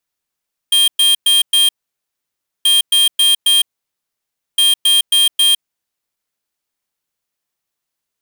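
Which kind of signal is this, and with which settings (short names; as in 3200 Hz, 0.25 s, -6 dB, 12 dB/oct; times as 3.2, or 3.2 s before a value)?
beep pattern square 3200 Hz, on 0.16 s, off 0.11 s, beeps 4, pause 0.96 s, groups 3, -11 dBFS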